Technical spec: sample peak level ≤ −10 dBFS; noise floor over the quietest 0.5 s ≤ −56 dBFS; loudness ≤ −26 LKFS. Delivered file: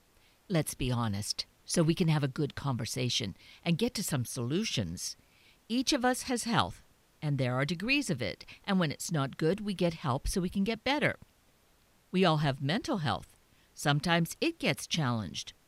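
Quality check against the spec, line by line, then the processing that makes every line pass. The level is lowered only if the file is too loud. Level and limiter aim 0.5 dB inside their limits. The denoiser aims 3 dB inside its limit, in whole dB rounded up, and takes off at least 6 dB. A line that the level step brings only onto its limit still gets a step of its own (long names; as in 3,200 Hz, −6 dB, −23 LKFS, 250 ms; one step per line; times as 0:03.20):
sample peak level −12.0 dBFS: in spec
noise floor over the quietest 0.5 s −66 dBFS: in spec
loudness −31.5 LKFS: in spec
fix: no processing needed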